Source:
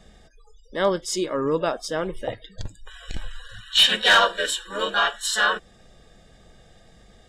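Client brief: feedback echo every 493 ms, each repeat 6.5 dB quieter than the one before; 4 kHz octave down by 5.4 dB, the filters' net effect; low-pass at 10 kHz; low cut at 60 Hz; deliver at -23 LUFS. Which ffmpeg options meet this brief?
-af "highpass=60,lowpass=10000,equalizer=f=4000:t=o:g=-7.5,aecho=1:1:493|986|1479|1972|2465|2958:0.473|0.222|0.105|0.0491|0.0231|0.0109,volume=1.06"

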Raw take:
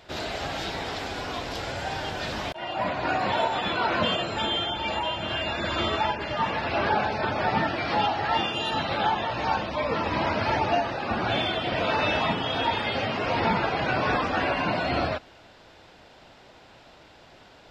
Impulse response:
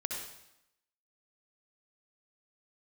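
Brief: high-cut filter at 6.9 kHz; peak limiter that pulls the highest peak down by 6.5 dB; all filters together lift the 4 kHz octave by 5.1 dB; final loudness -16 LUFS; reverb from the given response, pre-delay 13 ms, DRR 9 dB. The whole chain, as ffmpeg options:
-filter_complex "[0:a]lowpass=6900,equalizer=f=4000:t=o:g=7,alimiter=limit=0.141:level=0:latency=1,asplit=2[s0][s1];[1:a]atrim=start_sample=2205,adelay=13[s2];[s1][s2]afir=irnorm=-1:irlink=0,volume=0.266[s3];[s0][s3]amix=inputs=2:normalize=0,volume=3.16"

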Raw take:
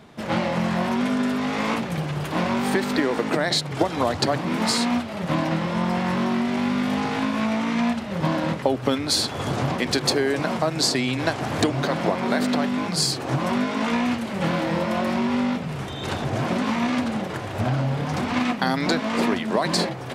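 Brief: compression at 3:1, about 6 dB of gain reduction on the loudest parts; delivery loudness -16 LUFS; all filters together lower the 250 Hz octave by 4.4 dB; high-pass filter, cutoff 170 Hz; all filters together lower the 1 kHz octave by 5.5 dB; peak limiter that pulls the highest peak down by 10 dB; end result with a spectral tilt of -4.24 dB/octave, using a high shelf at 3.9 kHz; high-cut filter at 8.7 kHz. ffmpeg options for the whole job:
-af "highpass=170,lowpass=8700,equalizer=f=250:t=o:g=-3.5,equalizer=f=1000:t=o:g=-6.5,highshelf=f=3900:g=-7.5,acompressor=threshold=0.0398:ratio=3,volume=6.68,alimiter=limit=0.473:level=0:latency=1"

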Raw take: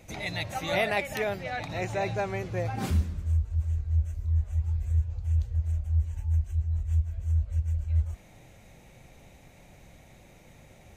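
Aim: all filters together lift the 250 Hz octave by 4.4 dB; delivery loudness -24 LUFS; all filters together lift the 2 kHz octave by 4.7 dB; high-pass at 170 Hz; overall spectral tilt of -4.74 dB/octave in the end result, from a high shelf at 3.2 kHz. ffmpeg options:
-af "highpass=170,equalizer=f=250:t=o:g=8.5,equalizer=f=2000:t=o:g=4,highshelf=f=3200:g=4,volume=2.51"

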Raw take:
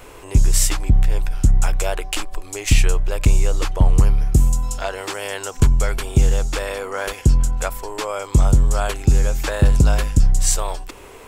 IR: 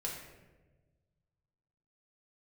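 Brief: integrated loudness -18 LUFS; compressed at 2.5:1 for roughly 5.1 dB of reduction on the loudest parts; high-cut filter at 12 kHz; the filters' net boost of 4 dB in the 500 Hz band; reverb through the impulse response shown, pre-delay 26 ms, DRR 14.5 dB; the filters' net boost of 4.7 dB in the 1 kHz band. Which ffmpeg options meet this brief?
-filter_complex "[0:a]lowpass=12000,equalizer=f=500:t=o:g=3.5,equalizer=f=1000:t=o:g=5,acompressor=threshold=0.158:ratio=2.5,asplit=2[s0][s1];[1:a]atrim=start_sample=2205,adelay=26[s2];[s1][s2]afir=irnorm=-1:irlink=0,volume=0.168[s3];[s0][s3]amix=inputs=2:normalize=0,volume=1.68"

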